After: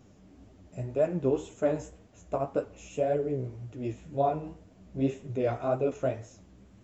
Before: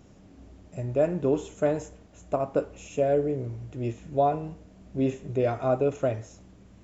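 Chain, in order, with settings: flange 1.9 Hz, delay 7.3 ms, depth 9.4 ms, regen +17%

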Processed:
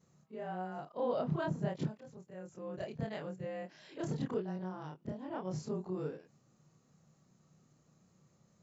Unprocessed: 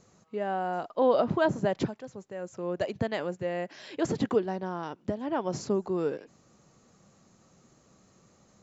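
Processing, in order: short-time reversal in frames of 65 ms; bell 150 Hz +11.5 dB 0.57 oct; gain -8 dB

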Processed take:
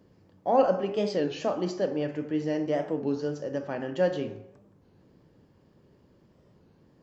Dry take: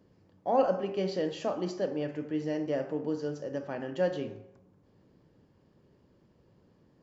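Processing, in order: record warp 33 1/3 rpm, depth 160 cents; gain +3.5 dB

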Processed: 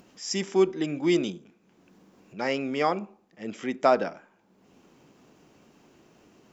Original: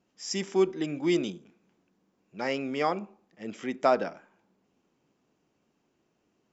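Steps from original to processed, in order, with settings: upward compressor, threshold -47 dBFS; gain +2.5 dB

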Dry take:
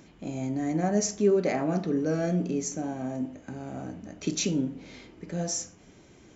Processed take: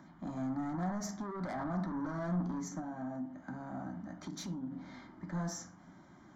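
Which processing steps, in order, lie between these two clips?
three-band isolator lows -14 dB, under 160 Hz, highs -19 dB, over 3500 Hz; limiter -24.5 dBFS, peak gain reduction 11 dB; 2.79–4.72 compressor 6:1, threshold -36 dBFS, peak gain reduction 8 dB; soft clip -32.5 dBFS, distortion -11 dB; fixed phaser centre 1100 Hz, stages 4; reverb, pre-delay 3 ms, DRR 11.5 dB; gain +3.5 dB

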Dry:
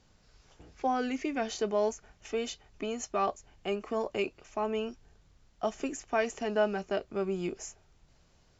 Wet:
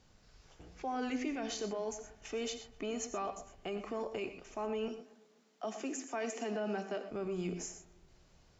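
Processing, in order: 4.88–7.11 steep high-pass 190 Hz 72 dB/oct; limiter -29 dBFS, peak gain reduction 12.5 dB; tape echo 0.247 s, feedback 43%, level -20 dB, low-pass 1200 Hz; non-linear reverb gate 0.14 s rising, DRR 8.5 dB; gain -1 dB

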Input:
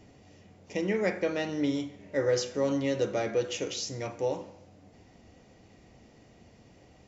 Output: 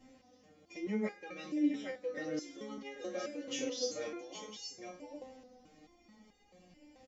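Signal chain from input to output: comb 3.8 ms, depth 95%; compressor 4:1, threshold -25 dBFS, peak gain reduction 7 dB; 0.76–2.78 rotary speaker horn 5.5 Hz; echo 0.809 s -5 dB; stepped resonator 4.6 Hz 130–410 Hz; gain +4.5 dB

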